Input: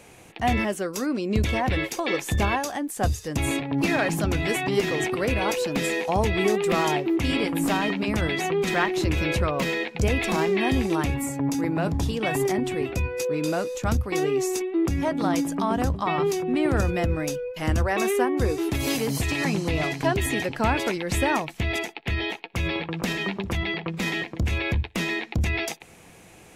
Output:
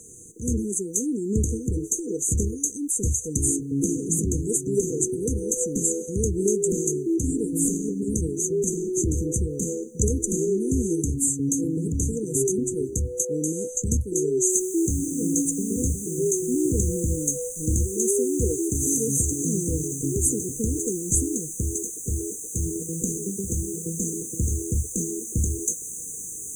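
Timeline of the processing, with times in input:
0:14.50: noise floor change −67 dB −42 dB
whole clip: flat-topped bell 3,900 Hz +15 dB 2.9 octaves; brick-wall band-stop 500–6,000 Hz; high-shelf EQ 9,000 Hz −2.5 dB

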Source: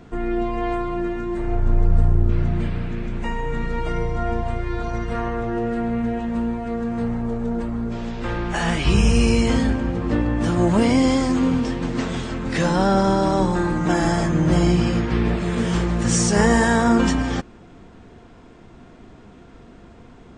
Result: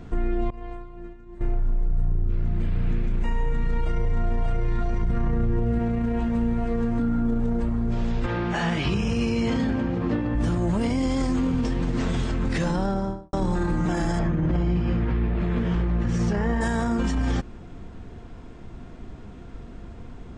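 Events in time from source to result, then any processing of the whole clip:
0:00.50–0:01.41: downward expander −13 dBFS
0:03.46–0:04.47: delay throw 590 ms, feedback 65%, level −3 dB
0:05.02–0:05.79: low-shelf EQ 270 Hz +11.5 dB
0:06.99–0:07.40: hollow resonant body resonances 270/1,400/3,400 Hz, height 16 dB, ringing for 90 ms
0:08.26–0:10.35: band-pass filter 130–5,300 Hz
0:12.63–0:13.33: fade out and dull
0:14.19–0:16.61: low-pass filter 2,800 Hz
whole clip: low-shelf EQ 120 Hz +12 dB; brickwall limiter −15.5 dBFS; level −1 dB

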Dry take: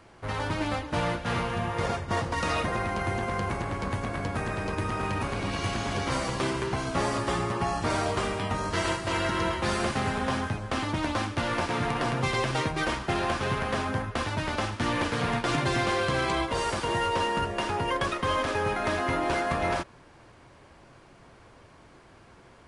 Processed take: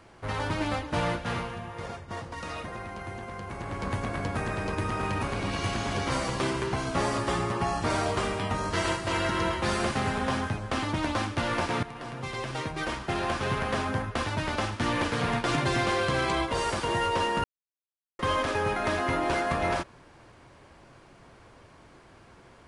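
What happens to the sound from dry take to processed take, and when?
0:01.15–0:03.93: duck −9 dB, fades 0.46 s
0:11.83–0:13.59: fade in, from −14.5 dB
0:17.44–0:18.19: silence

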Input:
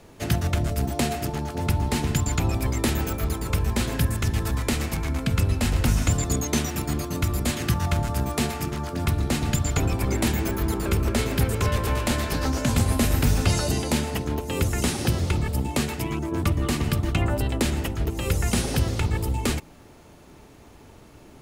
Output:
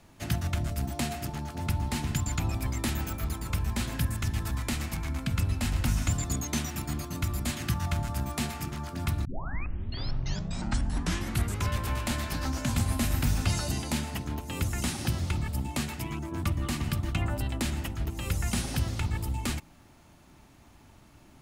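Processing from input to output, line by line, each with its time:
0:09.25: tape start 2.45 s
whole clip: parametric band 450 Hz −11 dB 0.6 octaves; level −5.5 dB

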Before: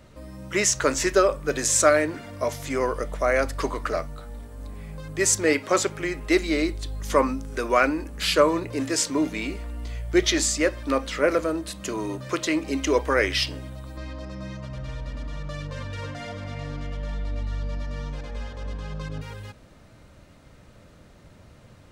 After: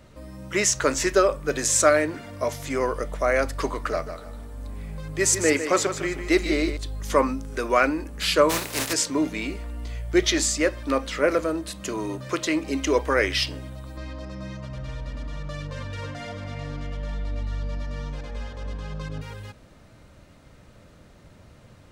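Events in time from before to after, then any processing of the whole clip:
0:03.91–0:06.77: repeating echo 153 ms, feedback 31%, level −9.5 dB
0:08.49–0:08.92: compressing power law on the bin magnitudes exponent 0.35

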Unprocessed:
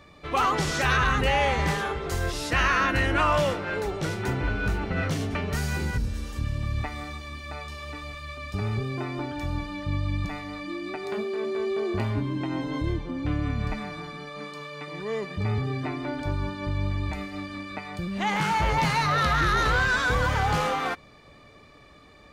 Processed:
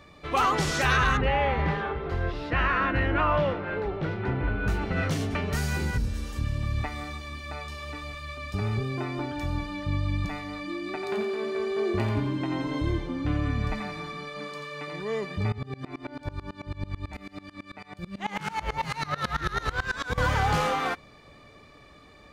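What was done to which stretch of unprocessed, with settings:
0:01.17–0:04.68: high-frequency loss of the air 360 metres
0:10.80–0:14.96: feedback echo with a high-pass in the loop 87 ms, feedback 47%, level −6.5 dB
0:15.52–0:20.18: tremolo with a ramp in dB swelling 9.1 Hz, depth 24 dB

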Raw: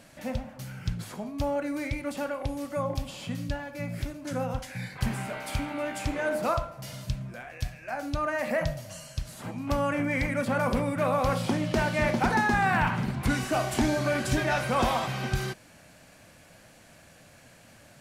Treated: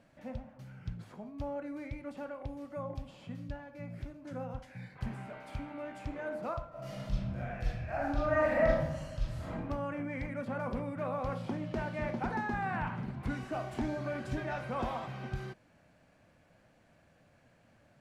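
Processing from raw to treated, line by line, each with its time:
0:06.69–0:09.52: thrown reverb, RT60 1.1 s, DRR −9.5 dB
whole clip: low-pass filter 1,500 Hz 6 dB per octave; level −9 dB

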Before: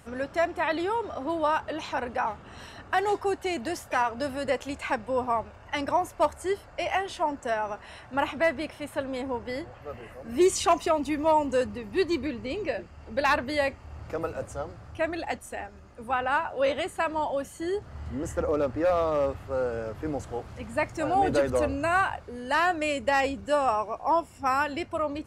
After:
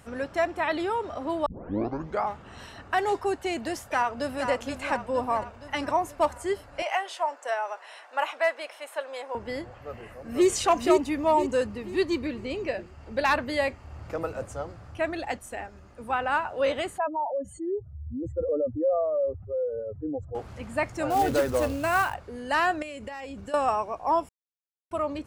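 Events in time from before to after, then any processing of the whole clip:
0:01.46: tape start 0.87 s
0:03.87–0:04.49: delay throw 470 ms, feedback 60%, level −7 dB
0:06.82–0:09.35: high-pass filter 510 Hz 24 dB per octave
0:09.85–0:10.48: delay throw 490 ms, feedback 35%, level −1 dB
0:16.98–0:20.35: expanding power law on the bin magnitudes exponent 2.6
0:21.10–0:22.14: floating-point word with a short mantissa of 2 bits
0:22.82–0:23.54: downward compressor 12 to 1, threshold −34 dBFS
0:24.29–0:24.91: silence

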